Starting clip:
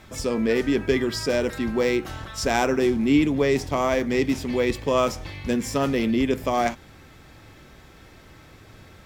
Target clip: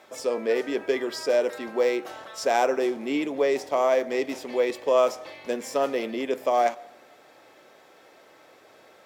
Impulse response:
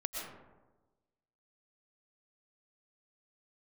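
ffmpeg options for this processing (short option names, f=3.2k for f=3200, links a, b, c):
-filter_complex "[0:a]highpass=390,equalizer=f=590:w=1.1:g=9,asplit=2[a][b];[1:a]atrim=start_sample=2205[c];[b][c]afir=irnorm=-1:irlink=0,volume=-23.5dB[d];[a][d]amix=inputs=2:normalize=0,volume=-5.5dB"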